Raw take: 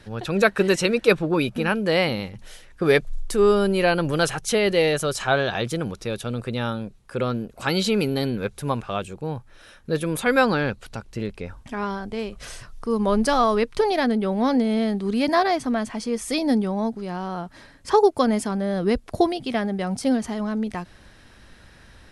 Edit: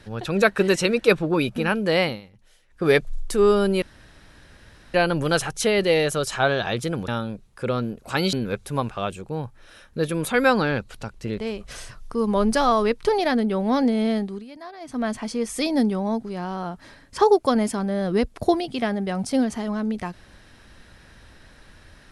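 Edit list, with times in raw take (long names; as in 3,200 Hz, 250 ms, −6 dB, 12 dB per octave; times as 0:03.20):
0:02.03–0:02.86: duck −15 dB, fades 0.18 s
0:03.82: splice in room tone 1.12 s
0:05.96–0:06.60: remove
0:07.85–0:08.25: remove
0:11.31–0:12.11: remove
0:14.89–0:15.80: duck −20 dB, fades 0.28 s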